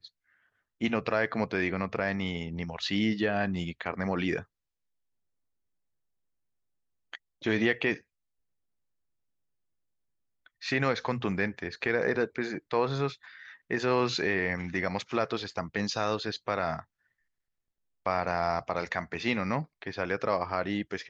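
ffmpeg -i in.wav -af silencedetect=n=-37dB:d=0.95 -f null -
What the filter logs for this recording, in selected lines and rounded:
silence_start: 4.41
silence_end: 7.14 | silence_duration: 2.72
silence_start: 7.97
silence_end: 10.63 | silence_duration: 2.66
silence_start: 16.80
silence_end: 18.06 | silence_duration: 1.27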